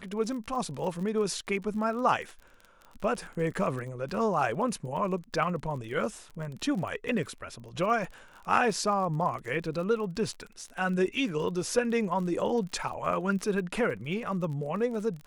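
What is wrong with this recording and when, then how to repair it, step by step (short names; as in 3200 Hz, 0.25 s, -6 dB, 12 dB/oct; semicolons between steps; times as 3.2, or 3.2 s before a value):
crackle 38/s -37 dBFS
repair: de-click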